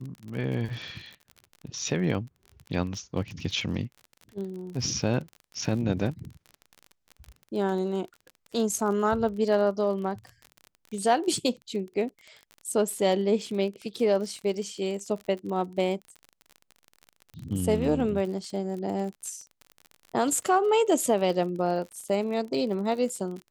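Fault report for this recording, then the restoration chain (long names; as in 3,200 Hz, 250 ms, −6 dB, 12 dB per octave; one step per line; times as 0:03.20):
surface crackle 37 per second −35 dBFS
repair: click removal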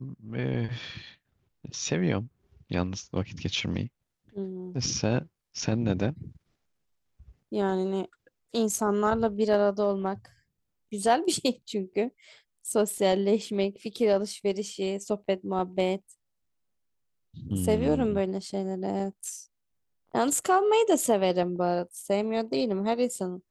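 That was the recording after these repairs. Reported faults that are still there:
none of them is left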